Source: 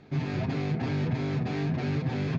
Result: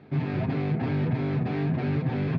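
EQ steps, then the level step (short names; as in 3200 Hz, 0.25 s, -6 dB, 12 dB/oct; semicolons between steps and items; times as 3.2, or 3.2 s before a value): HPF 78 Hz; air absorption 260 m; +3.0 dB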